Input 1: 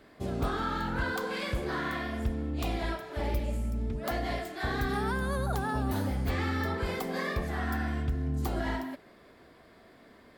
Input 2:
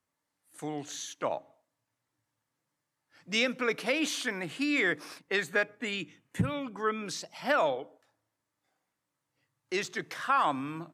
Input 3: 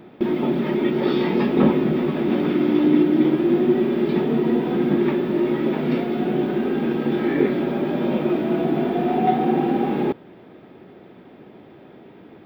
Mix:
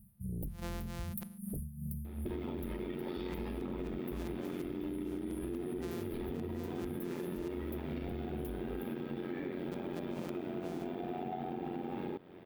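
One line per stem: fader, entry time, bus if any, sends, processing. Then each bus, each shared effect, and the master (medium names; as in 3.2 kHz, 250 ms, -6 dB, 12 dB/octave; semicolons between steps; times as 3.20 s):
-8.0 dB, 0.00 s, bus A, no send, FFT band-reject 220–9200 Hz; tremolo 2.6 Hz, depth 81%; sine folder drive 12 dB, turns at -20.5 dBFS
-3.0 dB, 0.00 s, no bus, no send, sorted samples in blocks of 256 samples; inverted gate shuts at -23 dBFS, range -30 dB
-2.5 dB, 2.05 s, bus A, no send, AM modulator 89 Hz, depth 70%
bus A: 0.0 dB, treble shelf 8.5 kHz +11 dB; peak limiter -19.5 dBFS, peak gain reduction 10.5 dB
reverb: none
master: harmonic-percussive split percussive -5 dB; compression 6:1, threshold -36 dBFS, peak gain reduction 11 dB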